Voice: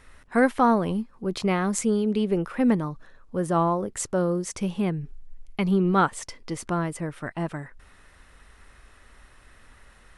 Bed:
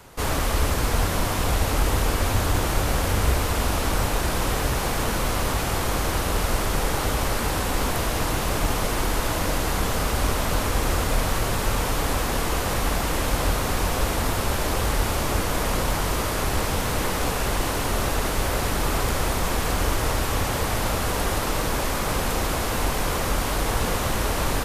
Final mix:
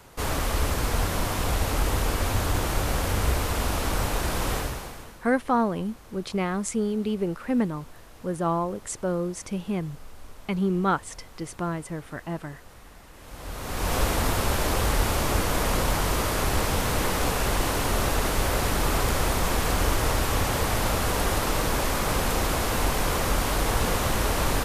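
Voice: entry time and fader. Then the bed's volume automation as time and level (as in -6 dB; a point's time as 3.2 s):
4.90 s, -3.0 dB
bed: 4.56 s -3 dB
5.24 s -25.5 dB
13.12 s -25.5 dB
13.94 s -0.5 dB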